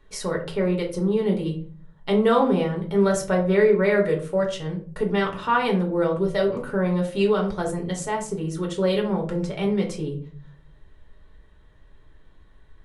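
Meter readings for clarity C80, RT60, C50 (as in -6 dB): 14.0 dB, 0.50 s, 10.0 dB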